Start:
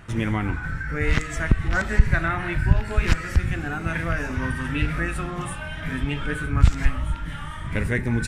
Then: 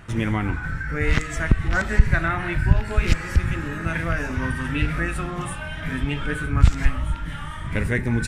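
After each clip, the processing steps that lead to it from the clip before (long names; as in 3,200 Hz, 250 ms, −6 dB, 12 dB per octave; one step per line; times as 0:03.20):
healed spectral selection 0:03.07–0:03.82, 660–1,900 Hz before
level +1 dB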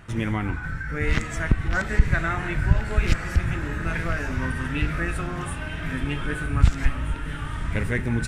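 feedback delay with all-pass diffusion 1,011 ms, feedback 61%, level −11 dB
level −2.5 dB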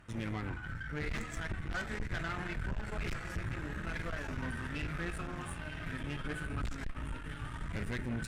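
flanger 0.75 Hz, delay 3.2 ms, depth 6.5 ms, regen +66%
tube saturation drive 29 dB, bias 0.6
level −3 dB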